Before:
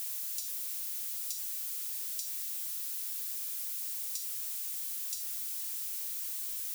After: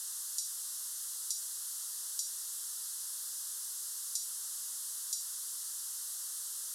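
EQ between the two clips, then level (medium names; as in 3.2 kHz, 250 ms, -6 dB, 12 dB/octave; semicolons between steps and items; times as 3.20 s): low-pass 11 kHz 24 dB/octave; bass shelf 130 Hz -8.5 dB; static phaser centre 470 Hz, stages 8; +5.0 dB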